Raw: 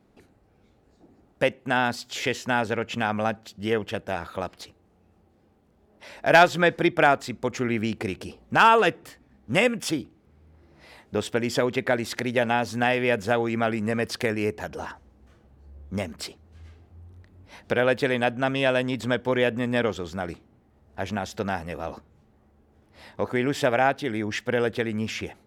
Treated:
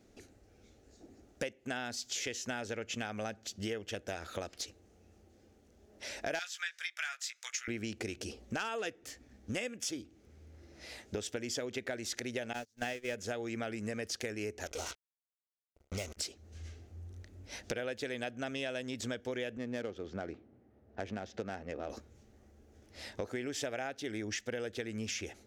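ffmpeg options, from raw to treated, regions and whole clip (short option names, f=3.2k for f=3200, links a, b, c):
-filter_complex "[0:a]asettb=1/sr,asplit=3[a][b][c];[a]atrim=end=6.394[d];[b]atrim=start=6.39:end=7.68,asetpts=PTS-STARTPTS,afade=t=in:d=0.004:c=qsin,afade=t=out:st=1.286:d=0.004:c=qsin,highpass=f=1.4k:w=0.5412,highpass=f=1.4k:w=1.3066,asplit=2[e][f];[f]adelay=17,volume=-6.5dB[g];[e][g]amix=inputs=2:normalize=0,atrim=end_sample=56889[h];[c]atrim=start=7.676[i];[d][h]acrossfade=d=0.004:c1=hsin:c2=qsin[j];[j][i]acrossfade=d=0.004:c1=qsin:c2=hsin,asettb=1/sr,asplit=3[k][l][m];[k]atrim=end=12.534[n];[l]atrim=start=12.53:end=13.15,asetpts=PTS-STARTPTS,afade=t=in:d=0.004:c=qsin,afade=t=out:st=0.616:d=0.004:c=qsin,aeval=exprs='val(0)+0.5*0.0335*sgn(val(0))':c=same,agate=range=-45dB:threshold=-22dB:ratio=16:release=100:detection=peak[o];[m]atrim=start=13.146[p];[n][o]acrossfade=d=0.004:c1=hsin:c2=qsin[q];[q][p]acrossfade=d=0.004:c1=qsin:c2=hsin,asettb=1/sr,asplit=3[r][s][t];[r]atrim=end=14.664[u];[s]atrim=start=14.66:end=16.17,asetpts=PTS-STARTPTS,afade=t=in:d=0.004:c=qsin,afade=t=out:st=1.506:d=0.004:c=qsin,acrusher=bits=5:mix=0:aa=0.5,asuperstop=centerf=1700:order=4:qfactor=6.1,equalizer=f=240:t=o:w=0.91:g=-8.5[v];[t]atrim=start=16.166[w];[u][v]acrossfade=d=0.004:c1=hsin:c2=qsin[x];[x][w]acrossfade=d=0.004:c1=qsin:c2=hsin,asettb=1/sr,asplit=3[y][z][aa];[y]atrim=end=19.574[ab];[z]atrim=start=19.57:end=21.9,asetpts=PTS-STARTPTS,afade=t=in:d=0.004:c=qsin,afade=t=out:st=2.326:d=0.004:c=qsin,highpass=110,lowpass=7.4k,highshelf=f=2.1k:g=-8.5,adynamicsmooth=sensitivity=6.5:basefreq=2.8k[ac];[aa]atrim=start=21.896[ad];[ab][ac]acrossfade=d=0.004:c1=hsin:c2=qsin[ae];[ae][ad]acrossfade=d=0.004:c1=qsin:c2=hsin,equalizer=f=160:t=o:w=0.67:g=-10,equalizer=f=1k:t=o:w=0.67:g=-11,equalizer=f=6.3k:t=o:w=0.67:g=11,acompressor=threshold=-37dB:ratio=6,volume=1dB"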